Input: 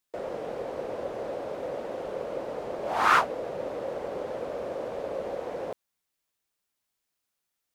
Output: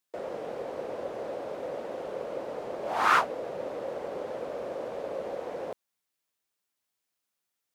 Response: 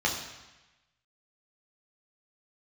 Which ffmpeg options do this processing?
-af "lowshelf=f=71:g=-11,volume=-1.5dB"

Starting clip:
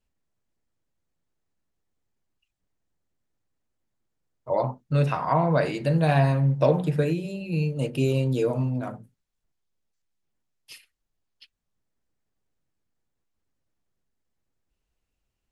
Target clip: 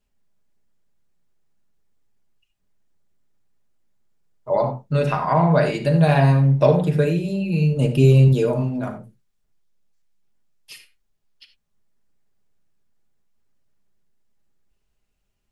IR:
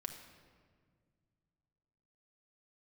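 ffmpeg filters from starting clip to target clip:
-filter_complex "[0:a]asettb=1/sr,asplit=3[a][b][c];[a]atrim=end=7.734[d];[b]atrim=start=7.73:end=8.28,asetpts=PTS-STARTPTS,afade=t=in:d=0.004:c=qsin,afade=t=out:st=0.546:d=0.004:c=qsin,lowshelf=f=160:g=11.5[e];[c]atrim=start=8.276[f];[d][e]acrossfade=d=0.004:c1=hsin:c2=qsin[g];[g][f]acrossfade=d=0.004:c1=qsin:c2=hsin[h];[1:a]atrim=start_sample=2205,atrim=end_sample=4410[i];[h][i]afir=irnorm=-1:irlink=0,volume=7dB"

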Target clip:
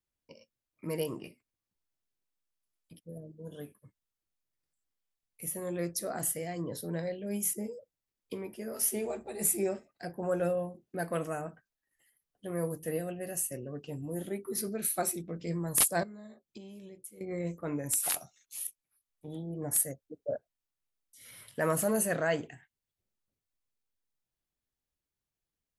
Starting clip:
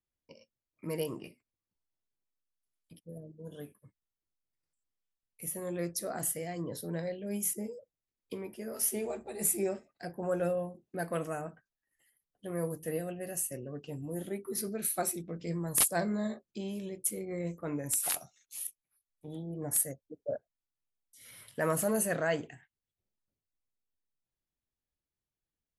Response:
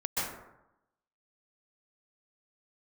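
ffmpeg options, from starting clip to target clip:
-filter_complex "[0:a]asettb=1/sr,asplit=3[a][b][c];[a]atrim=end=16.034[d];[b]atrim=start=16.03:end=17.21,asetpts=PTS-STARTPTS,afade=t=in:d=0.004:c=qsin,afade=t=out:st=1.176:d=0.004:c=qsin,acompressor=threshold=-46dB:ratio=12[e];[c]atrim=start=17.206[f];[d][e]acrossfade=d=0.004:c1=hsin:c2=qsin[g];[g][f]acrossfade=d=0.004:c1=qsin:c2=hsin,volume=1dB"

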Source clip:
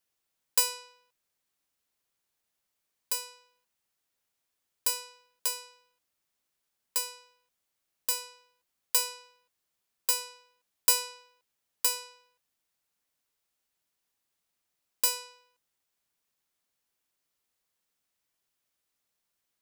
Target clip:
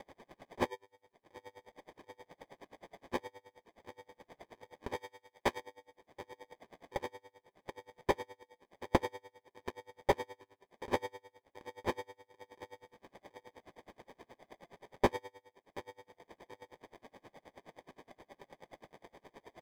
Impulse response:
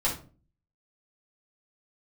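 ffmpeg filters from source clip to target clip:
-filter_complex "[0:a]asplit=2[a][b];[b]adelay=730,lowpass=f=3.8k:p=1,volume=-18dB,asplit=2[c][d];[d]adelay=730,lowpass=f=3.8k:p=1,volume=0.23[e];[a][c][e]amix=inputs=3:normalize=0,asplit=3[f][g][h];[f]afade=t=out:st=0.69:d=0.02[i];[g]acompressor=threshold=-55dB:ratio=2,afade=t=in:st=0.69:d=0.02,afade=t=out:st=3.12:d=0.02[j];[h]afade=t=in:st=3.12:d=0.02[k];[i][j][k]amix=inputs=3:normalize=0,asuperstop=centerf=5200:order=20:qfactor=0.66,acompressor=mode=upward:threshold=-38dB:ratio=2.5,asplit=2[l][m];[1:a]atrim=start_sample=2205,lowpass=2.2k[n];[m][n]afir=irnorm=-1:irlink=0,volume=-14dB[o];[l][o]amix=inputs=2:normalize=0,acrusher=samples=32:mix=1:aa=0.000001,asplit=2[p][q];[q]highpass=f=720:p=1,volume=17dB,asoftclip=type=tanh:threshold=-13.5dB[r];[p][r]amix=inputs=2:normalize=0,lowpass=f=1.8k:p=1,volume=-6dB,asettb=1/sr,asplit=3[s][t][u];[s]atrim=end=4.964[v];[t]atrim=start=4.96:end=5.6,asetpts=PTS-STARTPTS,afade=t=in:d=0.004:c=qsin,afade=t=out:st=0.636:d=0.004:c=qsin,tiltshelf=f=790:g=-3.5[w];[u]atrim=start=5.596[x];[v][w]acrossfade=d=0.004:c1=hsin:c2=qsin[y];[y][x]acrossfade=d=0.004:c1=qsin:c2=hsin,aeval=exprs='val(0)*pow(10,-31*(0.5-0.5*cos(2*PI*9.5*n/s))/20)':c=same,volume=2.5dB"

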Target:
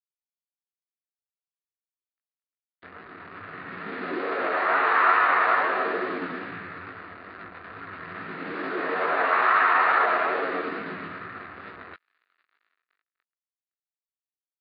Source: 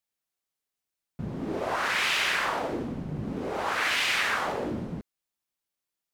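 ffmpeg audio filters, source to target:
-af "aeval=exprs='val(0)+0.5*0.0106*sgn(val(0))':c=same,aecho=1:1:4.1:0.93,dynaudnorm=f=530:g=5:m=6dB,asetrate=18522,aresample=44100,aresample=11025,acrusher=bits=4:mix=0:aa=0.5,aresample=44100,flanger=delay=16:depth=5.3:speed=2.3,asetrate=39289,aresample=44100,atempo=1.12246,highpass=500,equalizer=f=560:t=q:w=4:g=-8,equalizer=f=850:t=q:w=4:g=-9,equalizer=f=1.3k:t=q:w=4:g=8,equalizer=f=1.8k:t=q:w=4:g=7,equalizer=f=3.2k:t=q:w=4:g=-8,lowpass=f=3.4k:w=0.5412,lowpass=f=3.4k:w=1.3066"

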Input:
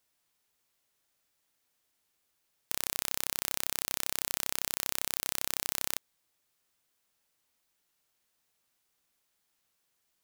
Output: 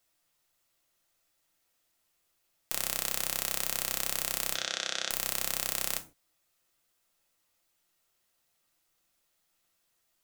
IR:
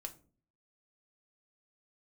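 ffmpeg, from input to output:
-filter_complex "[0:a]asettb=1/sr,asplit=3[a][b][c];[a]atrim=end=4.534[d];[b]atrim=start=4.53:end=5.09,asetpts=PTS-STARTPTS,afade=t=in:d=0.004:c=qsin,afade=t=out:st=0.556:d=0.004:c=qsin,highpass=250,equalizer=f=580:t=q:w=4:g=4,equalizer=f=1k:t=q:w=4:g=-8,equalizer=f=1.5k:t=q:w=4:g=9,equalizer=f=3.5k:t=q:w=4:g=9,equalizer=f=6k:t=q:w=4:g=5,lowpass=f=6.3k:w=0.5412,lowpass=f=6.3k:w=1.3066[e];[c]atrim=start=5.086[f];[d][e]acrossfade=d=0.004:c1=hsin:c2=qsin[g];[g][f]acrossfade=d=0.004:c1=qsin:c2=hsin[h];[1:a]atrim=start_sample=2205,afade=t=out:st=0.21:d=0.01,atrim=end_sample=9702[i];[h][i]afir=irnorm=-1:irlink=0,volume=5.5dB"

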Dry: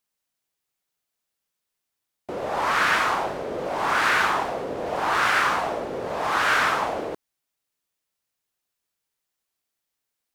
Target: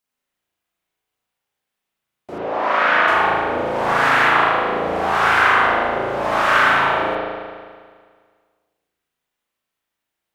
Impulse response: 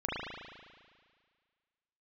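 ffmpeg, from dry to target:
-filter_complex "[0:a]asettb=1/sr,asplit=3[a][b][c];[a]atrim=end=2.384[d];[b]atrim=start=2.38:end=3.08,asetpts=PTS-STARTPTS,afade=t=in:d=0.004:c=qsin,afade=t=out:st=0.696:d=0.004:c=qsin,highpass=250,lowpass=3.7k[e];[c]atrim=start=3.076[f];[d][e]acrossfade=d=0.004:c1=hsin:c2=qsin[g];[g][f]acrossfade=d=0.004:c1=qsin:c2=hsin[h];[1:a]atrim=start_sample=2205[i];[h][i]afir=irnorm=-1:irlink=0,volume=-1dB"

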